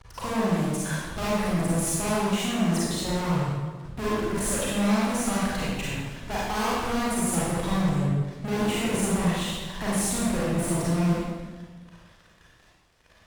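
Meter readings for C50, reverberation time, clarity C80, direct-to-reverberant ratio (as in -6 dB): -3.5 dB, 1.4 s, 0.0 dB, -7.5 dB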